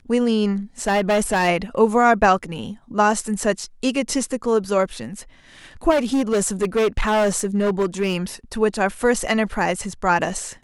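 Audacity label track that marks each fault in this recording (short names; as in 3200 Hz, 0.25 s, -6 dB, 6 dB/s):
0.820000	1.490000	clipped -14.5 dBFS
5.900000	8.170000	clipped -15 dBFS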